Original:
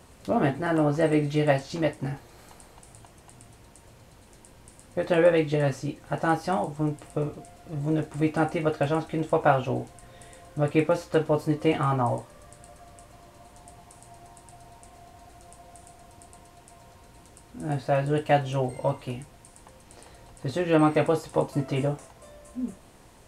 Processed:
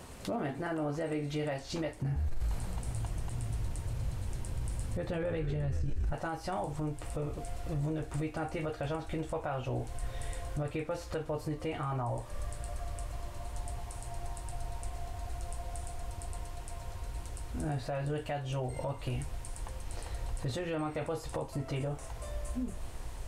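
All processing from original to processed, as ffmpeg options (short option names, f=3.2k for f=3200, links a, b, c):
-filter_complex "[0:a]asettb=1/sr,asplit=3[a][b][c];[a]atrim=end=2.024[d];[b]atrim=start=2.02:end=6.13,asetpts=PTS-STARTPTS,afade=t=in:d=0.004:c=qsin,afade=t=out:st=4.106:d=0.004:c=qsin,equalizer=f=130:w=0.78:g=12,asplit=7[e][f][g][h][i][j][k];[f]adelay=128,afreqshift=-64,volume=-12dB[l];[g]adelay=256,afreqshift=-128,volume=-16.9dB[m];[h]adelay=384,afreqshift=-192,volume=-21.8dB[n];[i]adelay=512,afreqshift=-256,volume=-26.6dB[o];[j]adelay=640,afreqshift=-320,volume=-31.5dB[p];[k]adelay=768,afreqshift=-384,volume=-36.4dB[q];[e][l][m][n][o][p][q]amix=inputs=7:normalize=0,atrim=end_sample=181251[r];[c]atrim=start=6.126[s];[d][r]acrossfade=d=0.004:c1=hsin:c2=qsin[t];[t][s]acrossfade=d=0.004:c1=qsin:c2=hsin,acompressor=threshold=-33dB:ratio=6,asubboost=boost=8:cutoff=67,alimiter=level_in=6.5dB:limit=-24dB:level=0:latency=1:release=17,volume=-6.5dB,volume=4dB"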